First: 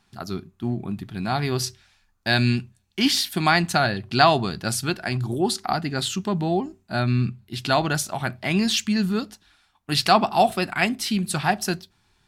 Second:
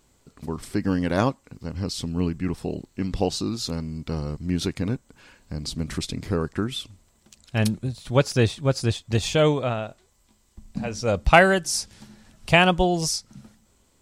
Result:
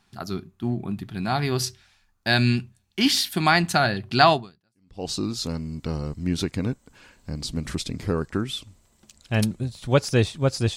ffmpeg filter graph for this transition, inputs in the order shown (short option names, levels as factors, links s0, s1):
-filter_complex "[0:a]apad=whole_dur=10.76,atrim=end=10.76,atrim=end=5.09,asetpts=PTS-STARTPTS[s0];[1:a]atrim=start=2.56:end=8.99,asetpts=PTS-STARTPTS[s1];[s0][s1]acrossfade=d=0.76:c1=exp:c2=exp"